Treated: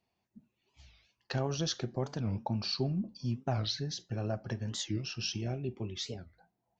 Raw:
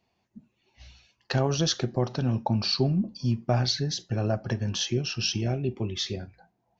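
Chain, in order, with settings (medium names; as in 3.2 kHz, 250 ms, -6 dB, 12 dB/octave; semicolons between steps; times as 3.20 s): warped record 45 rpm, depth 250 cents; trim -8 dB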